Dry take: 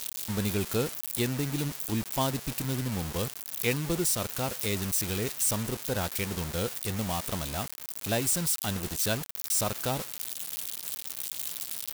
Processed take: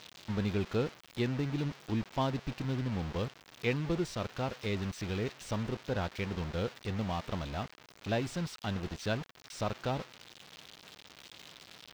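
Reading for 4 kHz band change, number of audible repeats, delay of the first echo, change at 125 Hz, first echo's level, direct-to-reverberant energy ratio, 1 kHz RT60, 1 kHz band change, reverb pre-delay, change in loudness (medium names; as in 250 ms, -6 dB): -8.0 dB, no echo, no echo, -2.0 dB, no echo, no reverb, no reverb, -3.0 dB, no reverb, -6.0 dB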